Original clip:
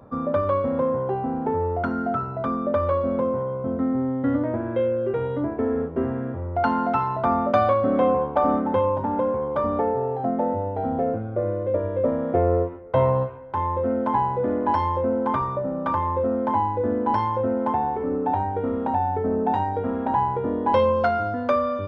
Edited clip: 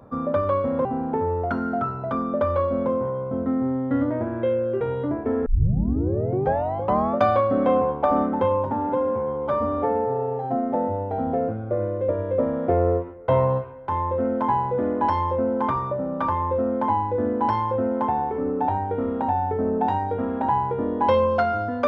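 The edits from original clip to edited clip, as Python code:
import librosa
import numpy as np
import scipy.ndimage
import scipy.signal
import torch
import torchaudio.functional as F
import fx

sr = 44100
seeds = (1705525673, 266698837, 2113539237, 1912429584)

y = fx.edit(x, sr, fx.cut(start_s=0.85, length_s=0.33),
    fx.tape_start(start_s=5.79, length_s=1.71),
    fx.stretch_span(start_s=9.05, length_s=1.35, factor=1.5), tone=tone)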